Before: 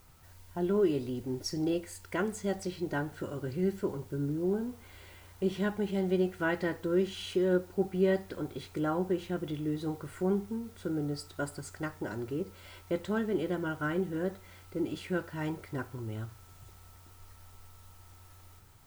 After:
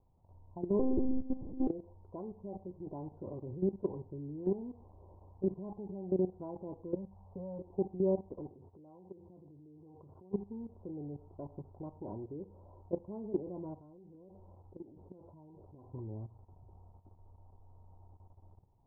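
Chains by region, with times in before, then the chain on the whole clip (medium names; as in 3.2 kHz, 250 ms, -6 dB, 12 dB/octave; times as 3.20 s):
0.79–1.67 s: bass shelf 160 Hz +11 dB + flutter echo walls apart 7 m, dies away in 0.98 s + monotone LPC vocoder at 8 kHz 260 Hz
6.95–7.59 s: static phaser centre 840 Hz, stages 4 + three bands compressed up and down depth 40%
8.49–10.33 s: high-pass 65 Hz 24 dB/octave + compression 8:1, threshold -41 dBFS
13.73–15.94 s: compression 10:1, threshold -40 dBFS + distance through air 55 m
whole clip: steep low-pass 1 kHz 72 dB/octave; level held to a coarse grid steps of 14 dB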